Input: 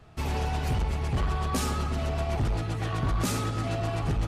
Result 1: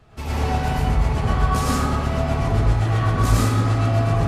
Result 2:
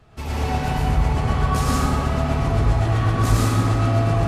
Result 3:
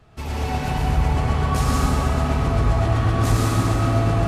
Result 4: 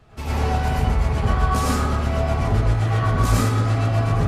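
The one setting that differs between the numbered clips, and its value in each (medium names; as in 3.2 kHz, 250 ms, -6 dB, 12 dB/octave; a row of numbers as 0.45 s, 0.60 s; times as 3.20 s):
plate-style reverb, RT60: 1.2 s, 2.5 s, 5.3 s, 0.55 s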